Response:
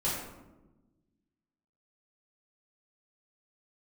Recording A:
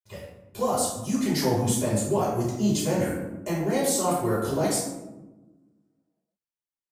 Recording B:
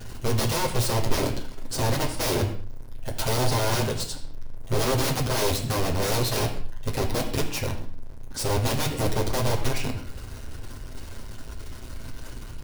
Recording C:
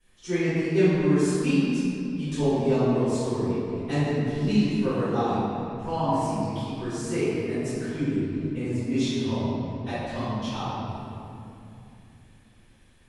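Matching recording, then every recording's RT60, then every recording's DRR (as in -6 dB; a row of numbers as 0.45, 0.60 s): A; 1.1, 0.55, 2.8 s; -9.0, -5.5, -21.0 dB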